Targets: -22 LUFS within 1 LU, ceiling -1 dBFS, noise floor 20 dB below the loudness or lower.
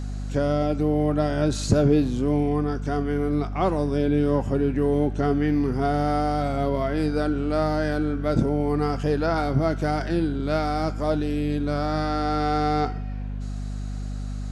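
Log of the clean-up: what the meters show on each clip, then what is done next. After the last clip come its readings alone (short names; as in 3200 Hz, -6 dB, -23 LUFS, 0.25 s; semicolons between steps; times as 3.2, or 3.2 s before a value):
hum 50 Hz; harmonics up to 250 Hz; hum level -27 dBFS; loudness -24.5 LUFS; peak -9.0 dBFS; loudness target -22.0 LUFS
-> de-hum 50 Hz, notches 5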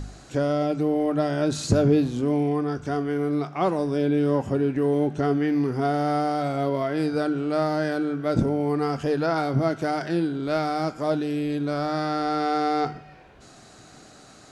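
hum none; loudness -24.5 LUFS; peak -9.5 dBFS; loudness target -22.0 LUFS
-> gain +2.5 dB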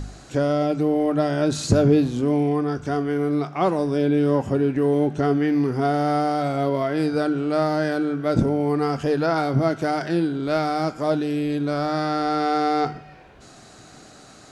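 loudness -22.0 LUFS; peak -7.0 dBFS; noise floor -47 dBFS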